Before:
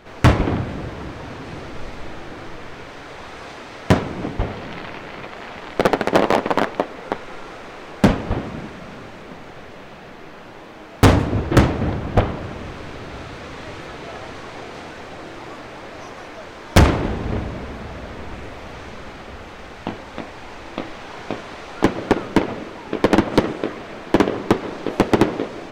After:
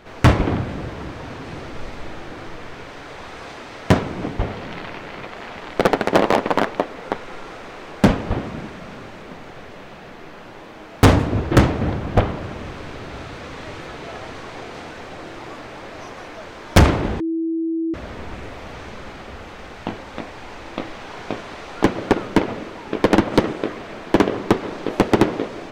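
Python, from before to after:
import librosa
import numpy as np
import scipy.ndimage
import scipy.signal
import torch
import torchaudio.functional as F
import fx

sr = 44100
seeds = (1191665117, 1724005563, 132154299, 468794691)

y = fx.edit(x, sr, fx.bleep(start_s=17.2, length_s=0.74, hz=327.0, db=-19.5), tone=tone)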